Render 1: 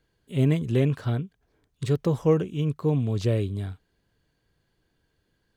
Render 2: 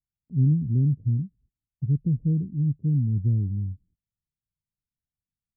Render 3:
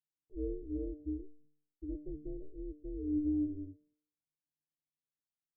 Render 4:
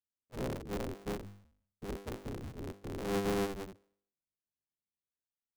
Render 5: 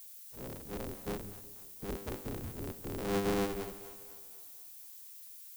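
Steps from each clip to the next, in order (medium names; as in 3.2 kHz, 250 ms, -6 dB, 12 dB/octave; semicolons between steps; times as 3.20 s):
inverse Chebyshev low-pass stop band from 1.3 kHz, stop band 80 dB; gate -60 dBFS, range -25 dB; trim +3 dB
ring modulator 190 Hz; feedback comb 150 Hz, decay 0.59 s, harmonics all, mix 90%; trim +1 dB
cycle switcher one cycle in 3, inverted
fade-in on the opening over 1.29 s; added noise violet -52 dBFS; two-band feedback delay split 540 Hz, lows 182 ms, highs 242 ms, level -15 dB; trim +1 dB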